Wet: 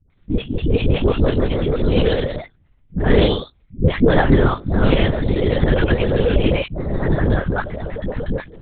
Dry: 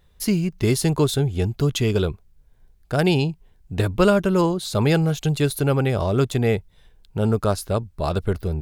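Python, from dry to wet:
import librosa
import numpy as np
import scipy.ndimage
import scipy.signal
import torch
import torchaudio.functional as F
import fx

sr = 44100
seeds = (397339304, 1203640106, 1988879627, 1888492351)

y = fx.pitch_heads(x, sr, semitones=3.0)
y = fx.peak_eq(y, sr, hz=790.0, db=-12.0, octaves=0.33)
y = fx.notch(y, sr, hz=640.0, q=12.0)
y = fx.level_steps(y, sr, step_db=22)
y = fx.doubler(y, sr, ms=14.0, db=-5.0)
y = fx.dispersion(y, sr, late='highs', ms=112.0, hz=510.0)
y = fx.echo_pitch(y, sr, ms=218, semitones=1, count=3, db_per_echo=-3.0)
y = fx.lpc_vocoder(y, sr, seeds[0], excitation='whisper', order=8)
y = y * librosa.db_to_amplitude(6.5)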